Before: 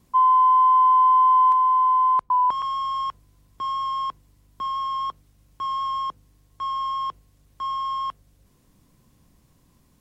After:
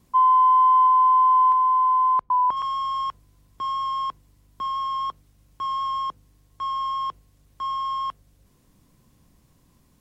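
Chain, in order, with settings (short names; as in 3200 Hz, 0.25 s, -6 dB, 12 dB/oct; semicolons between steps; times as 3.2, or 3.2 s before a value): 0.87–2.57 high shelf 3900 Hz -10.5 dB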